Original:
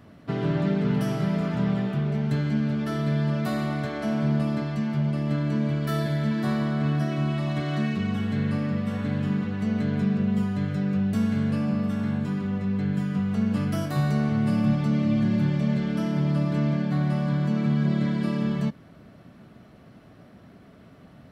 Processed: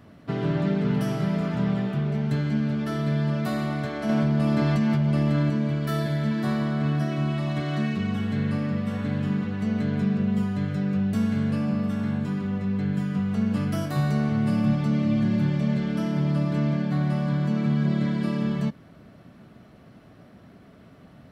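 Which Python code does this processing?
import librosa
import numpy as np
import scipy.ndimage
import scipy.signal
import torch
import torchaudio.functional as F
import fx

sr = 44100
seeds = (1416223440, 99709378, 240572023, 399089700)

y = fx.env_flatten(x, sr, amount_pct=100, at=(4.09, 5.5))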